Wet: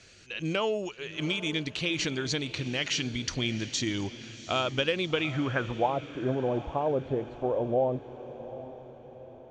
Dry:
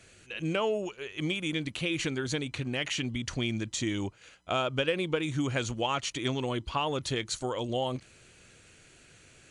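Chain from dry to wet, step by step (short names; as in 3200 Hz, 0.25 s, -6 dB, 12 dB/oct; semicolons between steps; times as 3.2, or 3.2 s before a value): low-pass sweep 5300 Hz -> 620 Hz, 4.96–5.95; diffused feedback echo 0.747 s, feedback 47%, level -14 dB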